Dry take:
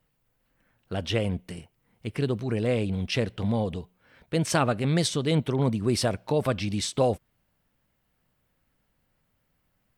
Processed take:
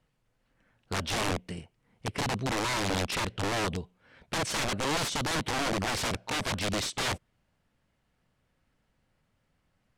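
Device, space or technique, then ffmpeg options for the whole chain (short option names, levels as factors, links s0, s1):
overflowing digital effects unit: -af "aeval=exprs='(mod(15.8*val(0)+1,2)-1)/15.8':c=same,lowpass=8100"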